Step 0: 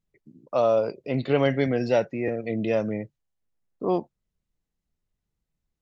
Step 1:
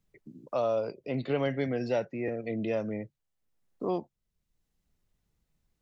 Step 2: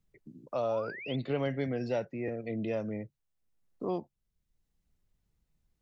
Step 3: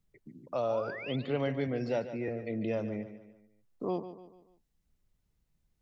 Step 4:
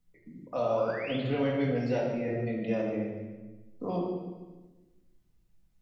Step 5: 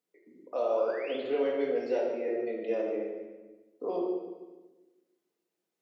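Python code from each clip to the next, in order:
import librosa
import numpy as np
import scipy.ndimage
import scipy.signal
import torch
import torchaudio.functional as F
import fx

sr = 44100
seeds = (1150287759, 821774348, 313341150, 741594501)

y1 = fx.band_squash(x, sr, depth_pct=40)
y1 = y1 * 10.0 ** (-6.5 / 20.0)
y2 = fx.low_shelf(y1, sr, hz=160.0, db=5.0)
y2 = fx.spec_paint(y2, sr, seeds[0], shape='rise', start_s=0.68, length_s=0.48, low_hz=730.0, high_hz=3600.0, level_db=-40.0)
y2 = y2 * 10.0 ** (-3.5 / 20.0)
y3 = fx.echo_feedback(y2, sr, ms=146, feedback_pct=43, wet_db=-12.0)
y4 = fx.room_shoebox(y3, sr, seeds[1], volume_m3=550.0, walls='mixed', distance_m=1.9)
y4 = y4 * 10.0 ** (-1.5 / 20.0)
y5 = fx.ladder_highpass(y4, sr, hz=340.0, resonance_pct=55)
y5 = y5 * 10.0 ** (6.0 / 20.0)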